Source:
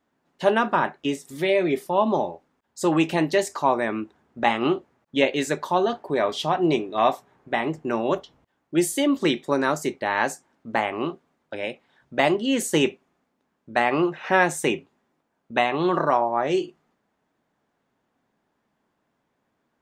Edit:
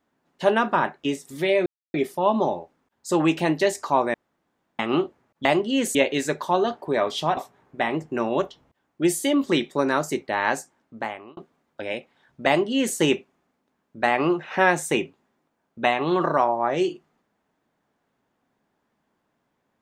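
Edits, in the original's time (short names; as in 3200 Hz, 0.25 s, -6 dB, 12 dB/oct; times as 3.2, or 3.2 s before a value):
1.66 insert silence 0.28 s
3.86–4.51 room tone
6.59–7.1 cut
10.1–11.1 fade out equal-power
12.2–12.7 copy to 5.17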